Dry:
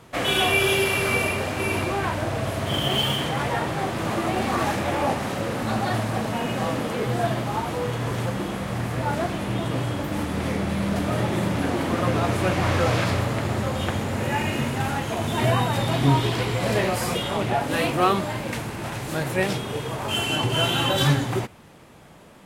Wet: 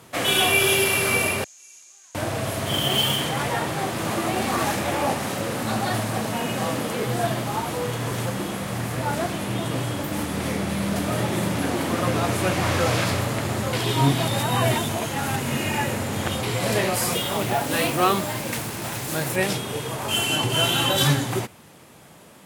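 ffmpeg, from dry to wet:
-filter_complex "[0:a]asettb=1/sr,asplit=3[a][b][c];[a]atrim=end=1.444[d];[b]atrim=start=1.44:end=2.15,asetpts=PTS-STARTPTS,afade=t=in:d=0.004:c=qsin,afade=t=out:st=0.706:d=0.004:c=qsin,bandpass=f=6.6k:t=q:w=12[e];[c]atrim=start=2.146[f];[d][e]acrossfade=d=0.004:c1=hsin:c2=qsin[g];[g][f]acrossfade=d=0.004:c1=qsin:c2=hsin,asettb=1/sr,asplit=3[h][i][j];[h]atrim=end=17.124[k];[i]atrim=start=17.12:end=19.36,asetpts=PTS-STARTPTS,afade=t=in:d=0.004:c=qsin,afade=t=out:st=2.236:d=0.004:c=qsin,acrusher=bits=5:mix=0:aa=0.5[l];[j]atrim=start=19.356[m];[k][l]acrossfade=d=0.004:c1=hsin:c2=qsin[n];[n][m]acrossfade=d=0.004:c1=qsin:c2=hsin,asplit=3[o][p][q];[o]atrim=end=13.732[r];[p]atrim=start=13.728:end=16.432,asetpts=PTS-STARTPTS,areverse[s];[q]atrim=start=16.428[t];[r][s]acrossfade=d=0.004:c1=hsin:c2=hsin[u];[u][t]acrossfade=d=0.004:c1=hsin:c2=hsin,highpass=81,aemphasis=mode=production:type=cd"

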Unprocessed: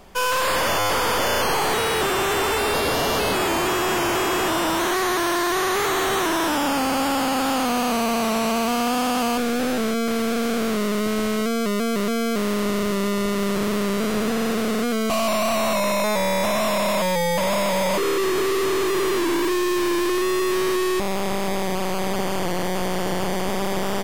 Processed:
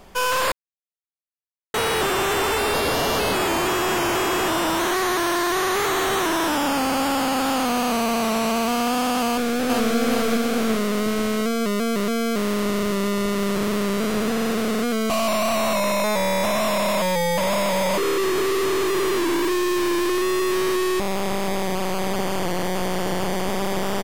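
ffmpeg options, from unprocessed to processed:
-filter_complex "[0:a]asplit=2[a][b];[b]afade=t=in:st=9.27:d=0.01,afade=t=out:st=9.95:d=0.01,aecho=0:1:420|840|1260|1680|2100|2520|2940:0.794328|0.397164|0.198582|0.099291|0.0496455|0.0248228|0.0124114[c];[a][c]amix=inputs=2:normalize=0,asplit=3[d][e][f];[d]atrim=end=0.52,asetpts=PTS-STARTPTS,afade=t=out:st=0.516:d=0.004:c=hsin[g];[e]atrim=start=0.52:end=1.74,asetpts=PTS-STARTPTS,volume=0[h];[f]atrim=start=1.74,asetpts=PTS-STARTPTS,afade=t=in:d=0.004:c=hsin[i];[g][h][i]concat=n=3:v=0:a=1"

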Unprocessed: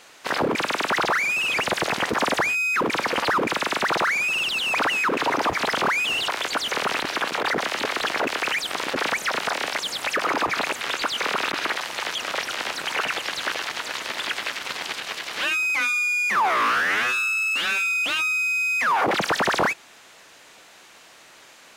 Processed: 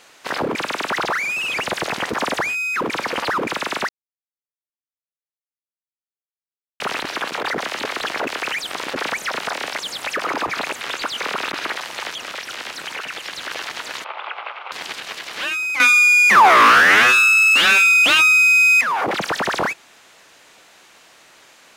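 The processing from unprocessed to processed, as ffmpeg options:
-filter_complex "[0:a]asettb=1/sr,asplit=3[a][b][c];[a]atrim=end=12.084[d];[b]atrim=start=12.08:end=13.51,asetpts=PTS-STARTPTS,afade=t=in:d=0.004:c=qsin,afade=t=out:st=1.426:d=0.004:c=qsin,acrossover=split=520|1300[e][f][g];[e]acompressor=threshold=-41dB:ratio=4[h];[f]acompressor=threshold=-39dB:ratio=4[i];[g]acompressor=threshold=-28dB:ratio=4[j];[h][i][j]amix=inputs=3:normalize=0[k];[c]atrim=start=13.506[l];[d][k]acrossfade=d=0.004:c1=hsin:c2=qsin[m];[m][l]acrossfade=d=0.004:c1=qsin:c2=hsin,asettb=1/sr,asplit=3[n][o][p];[n]atrim=end=14.044[q];[o]atrim=start=14.04:end=14.72,asetpts=PTS-STARTPTS,afade=t=in:d=0.004:c=qsin,afade=t=out:st=0.676:d=0.004:c=qsin,highpass=f=480:w=0.5412,highpass=f=480:w=1.3066,equalizer=f=820:t=q:w=4:g=7,equalizer=f=1.2k:t=q:w=4:g=6,equalizer=f=1.8k:t=q:w=4:g=-10,lowpass=f=2.6k:w=0.5412,lowpass=f=2.6k:w=1.3066[r];[p]atrim=start=14.716[s];[q][r]acrossfade=d=0.004:c1=hsin:c2=qsin[t];[t][s]acrossfade=d=0.004:c1=qsin:c2=hsin,asplit=5[u][v][w][x][y];[u]atrim=end=3.89,asetpts=PTS-STARTPTS,afade=t=out:st=3.886:d=0.004:c=hsin[z];[v]atrim=start=3.89:end=6.8,asetpts=PTS-STARTPTS,volume=0[aa];[w]atrim=start=6.8:end=15.802,asetpts=PTS-STARTPTS,afade=t=in:d=0.004:c=hsin[ab];[x]atrim=start=15.798:end=18.812,asetpts=PTS-STARTPTS,volume=10.5dB[ac];[y]atrim=start=18.808[ad];[z][aa][ab]concat=n=3:v=0:a=1[ae];[ae][ac]acrossfade=d=0.004:c1=hsin:c2=hsin[af];[af][ad]acrossfade=d=0.004:c1=hsin:c2=hsin"

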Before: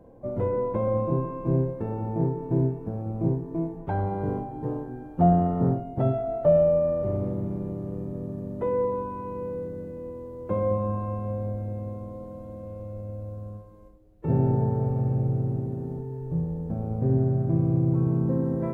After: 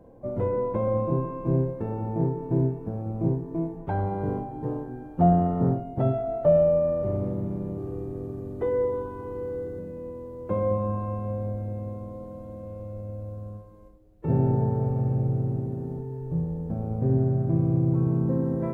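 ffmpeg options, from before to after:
-filter_complex "[0:a]asettb=1/sr,asplit=3[a][b][c];[a]atrim=end=7.774[d];[b]atrim=start=7.77:end=9.79,asetpts=PTS-STARTPTS,afade=t=in:d=0.004:c=qsin,afade=t=out:st=2.016:d=0.004:c=qsin,aecho=1:1:2.6:0.66,atrim=end_sample=89082[e];[c]atrim=start=9.786[f];[d][e]acrossfade=d=0.004:c1=hsin:c2=qsin[g];[g][f]acrossfade=d=0.004:c1=qsin:c2=hsin"

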